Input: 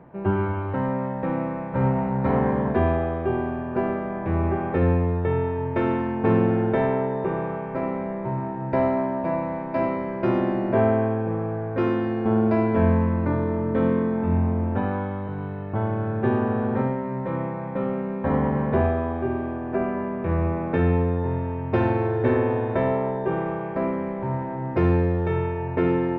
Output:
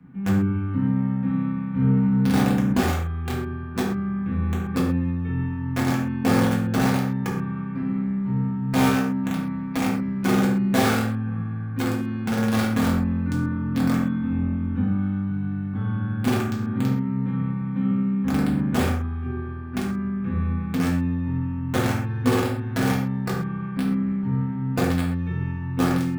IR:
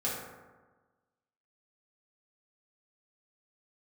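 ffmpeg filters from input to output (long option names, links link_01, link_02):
-filter_complex "[0:a]equalizer=frequency=125:width_type=o:width=1:gain=-4,equalizer=frequency=250:width_type=o:width=1:gain=4,equalizer=frequency=500:width_type=o:width=1:gain=-9,equalizer=frequency=2000:width_type=o:width=1:gain=-5,acrossover=split=170|300|1300[link_01][link_02][link_03][link_04];[link_01]asoftclip=type=tanh:threshold=-29.5dB[link_05];[link_03]acrusher=bits=3:mix=0:aa=0.000001[link_06];[link_04]alimiter=level_in=16dB:limit=-24dB:level=0:latency=1,volume=-16dB[link_07];[link_05][link_02][link_06][link_07]amix=inputs=4:normalize=0[link_08];[1:a]atrim=start_sample=2205,atrim=end_sample=6174[link_09];[link_08][link_09]afir=irnorm=-1:irlink=0"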